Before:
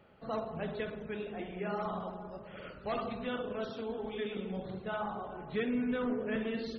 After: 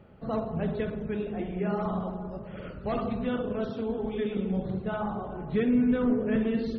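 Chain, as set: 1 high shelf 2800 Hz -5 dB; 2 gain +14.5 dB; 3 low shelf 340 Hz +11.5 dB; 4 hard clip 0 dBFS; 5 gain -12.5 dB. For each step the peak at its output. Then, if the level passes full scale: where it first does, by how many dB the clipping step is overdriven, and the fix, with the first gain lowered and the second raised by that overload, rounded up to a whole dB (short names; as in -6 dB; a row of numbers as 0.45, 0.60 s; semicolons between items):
-24.0, -9.5, -3.0, -3.0, -15.5 dBFS; no overload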